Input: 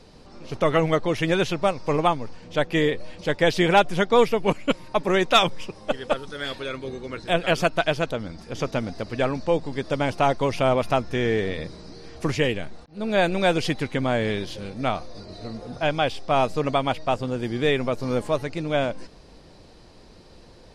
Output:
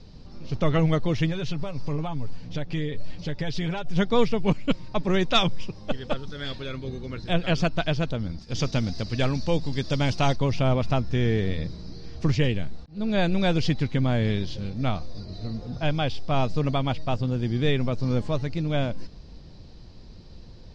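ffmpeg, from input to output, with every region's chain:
ffmpeg -i in.wav -filter_complex "[0:a]asettb=1/sr,asplit=3[link_01][link_02][link_03];[link_01]atrim=end=1.264[link_04];[link_02]atrim=start=1.26:end=3.96,asetpts=PTS-STARTPTS,afade=type=in:duration=0.004:curve=qsin,afade=type=out:start_time=2.696:duration=0.004:curve=qsin,aecho=1:1:7.1:0.51,atrim=end_sample=119070,acompressor=threshold=-27dB:ratio=3:attack=3.2:release=140:knee=1:detection=peak[link_05];[link_03]atrim=start=3.956[link_06];[link_04][link_05]acrossfade=duration=0.004:curve1=hsin:curve2=qsin[link_07];[link_07][link_06]acrossfade=duration=0.004:curve1=qsin:curve2=hsin,asettb=1/sr,asplit=3[link_08][link_09][link_10];[link_08]atrim=end=8.394[link_11];[link_09]atrim=start=8.39:end=10.36,asetpts=PTS-STARTPTS,afade=type=in:duration=0.004:curve=qsin,afade=type=out:start_time=1.966:duration=0.004:curve=qsin,agate=range=-33dB:threshold=-39dB:ratio=3:release=100:detection=peak,highshelf=frequency=3000:gain=12[link_12];[link_10]atrim=start=10.356[link_13];[link_11][link_12]acrossfade=duration=0.004:curve1=hsin:curve2=qsin[link_14];[link_14][link_13]acrossfade=duration=0.004:curve1=qsin:curve2=hsin,lowpass=frequency=5100:width=0.5412,lowpass=frequency=5100:width=1.3066,bass=frequency=250:gain=14,treble=frequency=4000:gain=12,volume=-6.5dB" out.wav

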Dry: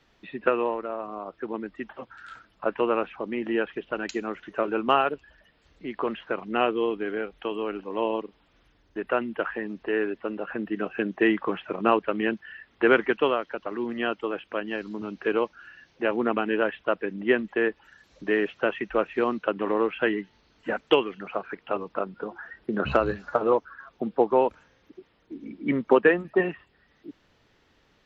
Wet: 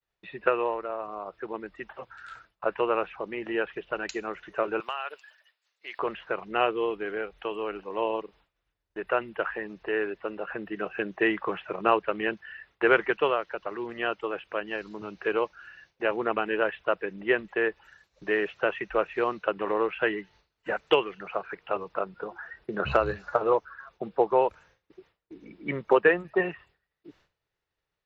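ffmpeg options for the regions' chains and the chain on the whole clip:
ffmpeg -i in.wav -filter_complex "[0:a]asettb=1/sr,asplit=3[link_01][link_02][link_03];[link_01]atrim=end=4.804[link_04];[link_02]atrim=start=4.8:end=5.99,asetpts=PTS-STARTPTS,afade=type=in:duration=0.004:curve=qsin,afade=type=out:start_time=1.186:duration=0.004:curve=qsin,highpass=770,highshelf=frequency=2700:gain=11,acompressor=threshold=-30dB:ratio=4:attack=3.2:release=140:knee=1:detection=peak[link_05];[link_03]atrim=start=5.986[link_06];[link_04][link_05]acrossfade=duration=0.004:curve1=hsin:curve2=qsin[link_07];[link_07][link_06]acrossfade=duration=0.004:curve1=qsin:curve2=hsin,agate=range=-33dB:threshold=-50dB:ratio=3:detection=peak,equalizer=frequency=250:width_type=o:width=0.56:gain=-14.5,bandreject=frequency=3200:width=18" out.wav

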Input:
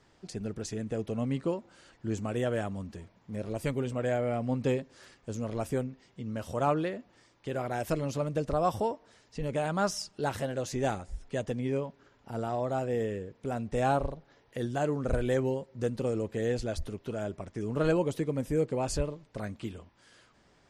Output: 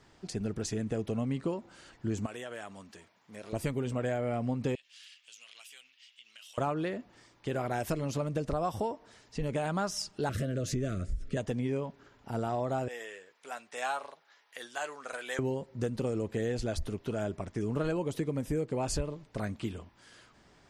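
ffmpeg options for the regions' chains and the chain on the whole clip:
ffmpeg -i in.wav -filter_complex "[0:a]asettb=1/sr,asplit=3[link_01][link_02][link_03];[link_01]atrim=end=2.264[link_04];[link_02]atrim=start=2.26:end=3.53,asetpts=PTS-STARTPTS,afade=type=in:duration=0.004:curve=qsin,afade=type=out:start_time=1.266:duration=0.004:curve=qsin,highpass=frequency=1100:poles=1,acompressor=threshold=-40dB:ratio=4:attack=3.2:release=140:knee=1:detection=peak[link_05];[link_03]atrim=start=3.526[link_06];[link_04][link_05]acrossfade=duration=0.004:curve1=hsin:curve2=qsin[link_07];[link_07][link_06]acrossfade=duration=0.004:curve1=qsin:curve2=hsin,asettb=1/sr,asplit=3[link_08][link_09][link_10];[link_08]atrim=end=4.754[link_11];[link_09]atrim=start=4.75:end=6.58,asetpts=PTS-STARTPTS,afade=type=in:duration=0.004:curve=qsin,afade=type=out:start_time=1.826:duration=0.004:curve=qsin,aeval=exprs='if(lt(val(0),0),0.708*val(0),val(0))':channel_layout=same,highpass=frequency=2900:width_type=q:width=3.9,acompressor=threshold=-52dB:ratio=4:attack=3.2:release=140:knee=1:detection=peak[link_12];[link_10]atrim=start=6.576[link_13];[link_11][link_12]acrossfade=duration=0.004:curve1=hsin:curve2=qsin[link_14];[link_14][link_13]acrossfade=duration=0.004:curve1=qsin:curve2=hsin,asettb=1/sr,asplit=3[link_15][link_16][link_17];[link_15]atrim=end=10.294[link_18];[link_16]atrim=start=10.29:end=11.37,asetpts=PTS-STARTPTS,afade=type=in:duration=0.004:curve=qsin,afade=type=out:start_time=1.076:duration=0.004:curve=qsin,lowshelf=frequency=350:gain=10.5,acompressor=threshold=-31dB:ratio=2:attack=3.2:release=140:knee=1:detection=peak,asuperstop=centerf=870:order=12:qfactor=1.9[link_19];[link_17]atrim=start=11.366[link_20];[link_18][link_19]acrossfade=duration=0.004:curve1=hsin:curve2=qsin[link_21];[link_21][link_20]acrossfade=duration=0.004:curve1=qsin:curve2=hsin,asettb=1/sr,asplit=3[link_22][link_23][link_24];[link_22]atrim=end=12.884[link_25];[link_23]atrim=start=12.88:end=15.39,asetpts=PTS-STARTPTS,afade=type=in:duration=0.004:curve=qsin,afade=type=out:start_time=2.506:duration=0.004:curve=qsin,highpass=1100,asplit=2[link_26][link_27];[link_27]adelay=12,volume=-11dB[link_28];[link_26][link_28]amix=inputs=2:normalize=0,atrim=end_sample=110691[link_29];[link_24]atrim=start=15.386[link_30];[link_25][link_29]acrossfade=duration=0.004:curve1=hsin:curve2=qsin[link_31];[link_31][link_30]acrossfade=duration=0.004:curve1=qsin:curve2=hsin,equalizer=frequency=530:width_type=o:width=0.32:gain=-3,acompressor=threshold=-31dB:ratio=6,volume=3dB" out.wav

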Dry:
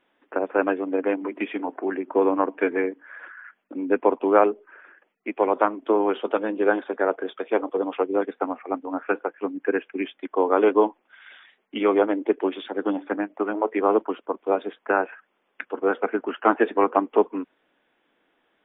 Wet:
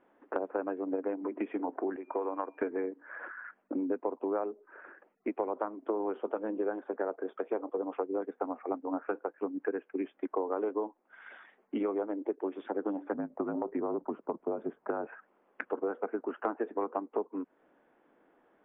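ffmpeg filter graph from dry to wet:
ffmpeg -i in.wav -filter_complex "[0:a]asettb=1/sr,asplit=3[link_01][link_02][link_03];[link_01]atrim=end=1.964[link_04];[link_02]atrim=start=1.96:end=2.62,asetpts=PTS-STARTPTS,afade=type=in:duration=0.004:curve=qsin,afade=type=out:start_time=0.656:duration=0.004:curve=qsin,highpass=frequency=1100:poles=1,aeval=exprs='val(0)+0.002*sin(2*PI*2400*n/s)':channel_layout=same[link_05];[link_03]atrim=start=2.616[link_06];[link_04][link_05]acrossfade=duration=0.004:curve1=hsin:curve2=qsin[link_07];[link_07][link_06]acrossfade=duration=0.004:curve1=qsin:curve2=hsin,asettb=1/sr,asplit=3[link_08][link_09][link_10];[link_08]atrim=end=13.144[link_11];[link_09]atrim=start=13.14:end=15.07,asetpts=PTS-STARTPTS,afade=type=in:duration=0.004:curve=qsin,afade=type=out:start_time=1.926:duration=0.004:curve=qsin,lowpass=frequency=1400:poles=1,acompressor=threshold=-23dB:ratio=2.5:attack=3.2:release=140:knee=1:detection=peak,afreqshift=-41[link_12];[link_10]atrim=start=15.066[link_13];[link_11][link_12]acrossfade=duration=0.004:curve1=hsin:curve2=qsin[link_14];[link_14][link_13]acrossfade=duration=0.004:curve1=qsin:curve2=hsin,lowpass=1400,equalizer=frequency=440:width=0.33:gain=4.5,acompressor=threshold=-31dB:ratio=6" out.wav

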